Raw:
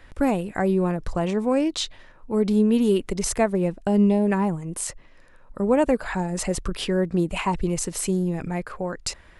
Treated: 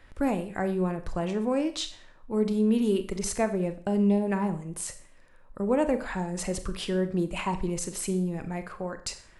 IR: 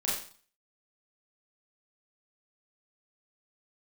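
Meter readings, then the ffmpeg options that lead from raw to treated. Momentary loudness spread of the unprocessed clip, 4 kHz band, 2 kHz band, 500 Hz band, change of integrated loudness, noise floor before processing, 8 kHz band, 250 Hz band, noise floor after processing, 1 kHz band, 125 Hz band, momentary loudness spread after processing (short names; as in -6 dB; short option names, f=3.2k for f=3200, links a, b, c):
10 LU, -5.0 dB, -5.0 dB, -5.0 dB, -5.0 dB, -50 dBFS, -5.0 dB, -5.0 dB, -54 dBFS, -5.0 dB, -5.0 dB, 11 LU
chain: -filter_complex "[0:a]asplit=2[a][b];[1:a]atrim=start_sample=2205[c];[b][c]afir=irnorm=-1:irlink=0,volume=-14dB[d];[a][d]amix=inputs=2:normalize=0,volume=-7dB"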